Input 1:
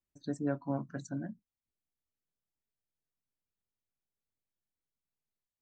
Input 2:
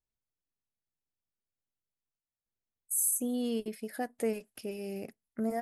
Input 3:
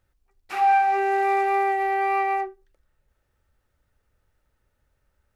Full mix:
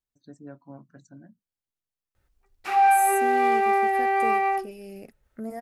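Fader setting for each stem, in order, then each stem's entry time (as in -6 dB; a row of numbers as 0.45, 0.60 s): -10.0, -2.5, +0.5 dB; 0.00, 0.00, 2.15 s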